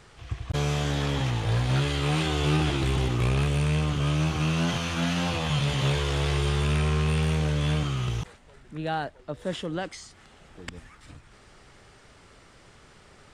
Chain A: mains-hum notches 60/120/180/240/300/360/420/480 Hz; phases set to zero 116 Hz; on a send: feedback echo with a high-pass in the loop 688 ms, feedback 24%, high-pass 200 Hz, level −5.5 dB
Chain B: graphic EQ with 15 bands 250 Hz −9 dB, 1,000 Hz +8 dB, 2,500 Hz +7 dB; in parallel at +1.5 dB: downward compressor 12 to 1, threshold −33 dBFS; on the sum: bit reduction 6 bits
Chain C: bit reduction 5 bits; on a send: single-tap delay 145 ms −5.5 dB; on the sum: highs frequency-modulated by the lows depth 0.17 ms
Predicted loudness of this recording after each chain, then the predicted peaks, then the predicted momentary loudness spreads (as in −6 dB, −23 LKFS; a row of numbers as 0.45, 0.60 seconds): −30.0, −23.0, −24.5 LKFS; −10.0, −10.5, −12.5 dBFS; 13, 13, 12 LU